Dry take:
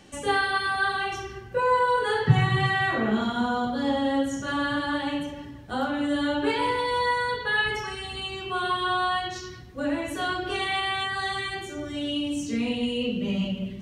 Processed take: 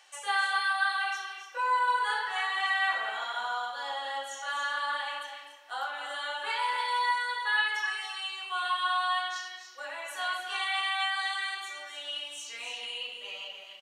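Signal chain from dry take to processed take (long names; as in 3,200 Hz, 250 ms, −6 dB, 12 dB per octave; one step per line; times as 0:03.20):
high-pass filter 790 Hz 24 dB per octave
loudspeakers that aren't time-aligned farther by 87 metres −11 dB, 99 metres −10 dB
level −2.5 dB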